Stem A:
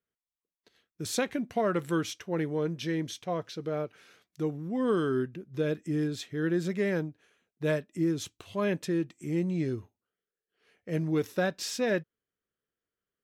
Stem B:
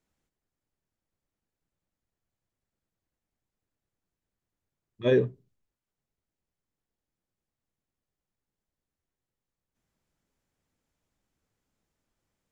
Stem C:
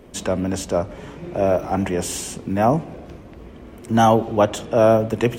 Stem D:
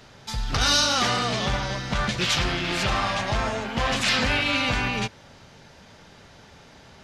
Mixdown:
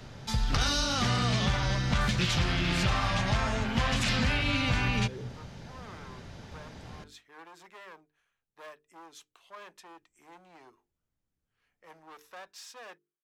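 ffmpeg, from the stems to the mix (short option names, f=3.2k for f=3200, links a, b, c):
-filter_complex "[0:a]volume=29dB,asoftclip=hard,volume=-29dB,highpass=f=960:t=q:w=1.7,adelay=950,volume=-12dB[a];[1:a]alimiter=level_in=2dB:limit=-24dB:level=0:latency=1,volume=-2dB,volume=-11.5dB[b];[3:a]volume=-2dB[c];[a][b][c]amix=inputs=3:normalize=0,lowshelf=f=300:g=11.5,bandreject=f=50:t=h:w=6,bandreject=f=100:t=h:w=6,bandreject=f=150:t=h:w=6,bandreject=f=200:t=h:w=6,bandreject=f=250:t=h:w=6,bandreject=f=300:t=h:w=6,bandreject=f=350:t=h:w=6,bandreject=f=400:t=h:w=6,bandreject=f=450:t=h:w=6,acrossover=split=210|970[d][e][f];[d]acompressor=threshold=-27dB:ratio=4[g];[e]acompressor=threshold=-37dB:ratio=4[h];[f]acompressor=threshold=-29dB:ratio=4[i];[g][h][i]amix=inputs=3:normalize=0"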